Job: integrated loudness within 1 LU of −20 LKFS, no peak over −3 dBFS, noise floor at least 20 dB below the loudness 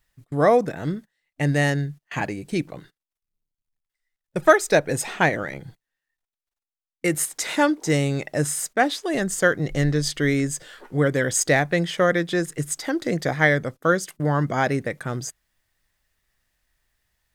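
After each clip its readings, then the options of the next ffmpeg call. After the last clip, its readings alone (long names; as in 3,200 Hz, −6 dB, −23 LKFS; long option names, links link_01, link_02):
integrated loudness −22.5 LKFS; sample peak −2.0 dBFS; target loudness −20.0 LKFS
→ -af "volume=2.5dB,alimiter=limit=-3dB:level=0:latency=1"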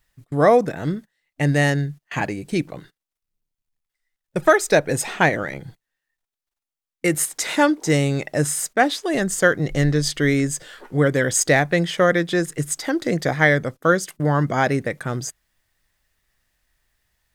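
integrated loudness −20.5 LKFS; sample peak −3.0 dBFS; background noise floor −87 dBFS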